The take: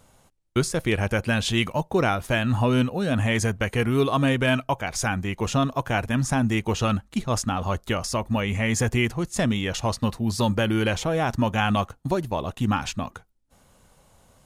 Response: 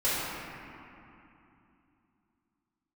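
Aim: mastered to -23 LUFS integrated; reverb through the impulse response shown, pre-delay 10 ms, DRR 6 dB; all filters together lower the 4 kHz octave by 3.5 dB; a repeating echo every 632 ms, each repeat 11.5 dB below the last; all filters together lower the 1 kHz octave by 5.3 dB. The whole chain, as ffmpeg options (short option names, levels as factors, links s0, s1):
-filter_complex "[0:a]equalizer=f=1000:t=o:g=-7,equalizer=f=4000:t=o:g=-4.5,aecho=1:1:632|1264|1896:0.266|0.0718|0.0194,asplit=2[s0][s1];[1:a]atrim=start_sample=2205,adelay=10[s2];[s1][s2]afir=irnorm=-1:irlink=0,volume=0.119[s3];[s0][s3]amix=inputs=2:normalize=0,volume=1.19"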